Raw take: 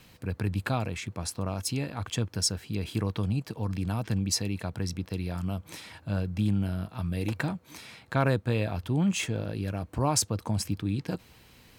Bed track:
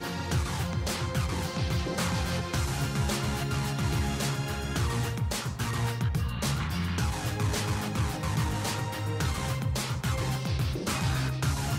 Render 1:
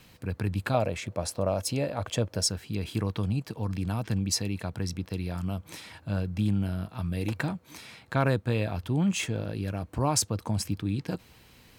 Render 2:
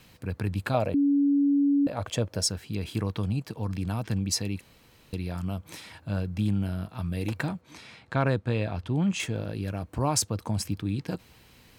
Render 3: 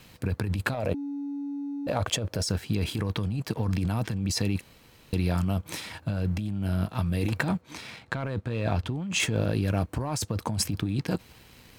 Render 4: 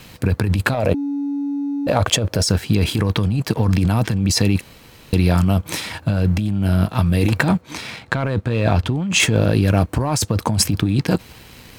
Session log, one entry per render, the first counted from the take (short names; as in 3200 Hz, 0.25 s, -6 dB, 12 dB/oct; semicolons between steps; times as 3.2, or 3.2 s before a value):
0.74–2.47 bell 580 Hz +14 dB 0.55 oct
0.94–1.87 bleep 283 Hz -19 dBFS; 4.61–5.13 room tone; 7.61–9.2 air absorption 55 m
sample leveller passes 1; negative-ratio compressor -28 dBFS, ratio -1
gain +10.5 dB; limiter -3 dBFS, peak gain reduction 1.5 dB